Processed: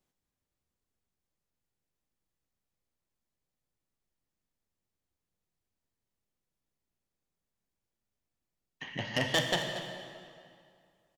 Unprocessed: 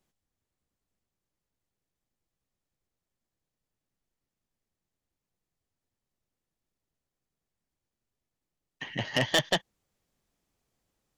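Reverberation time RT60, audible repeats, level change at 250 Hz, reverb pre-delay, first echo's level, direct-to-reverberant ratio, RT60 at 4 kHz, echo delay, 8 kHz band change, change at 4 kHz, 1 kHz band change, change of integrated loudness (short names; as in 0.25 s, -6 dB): 2.3 s, 1, -2.0 dB, 9 ms, -12.5 dB, 3.0 dB, 1.8 s, 0.233 s, -3.0 dB, -3.0 dB, -2.0 dB, -3.5 dB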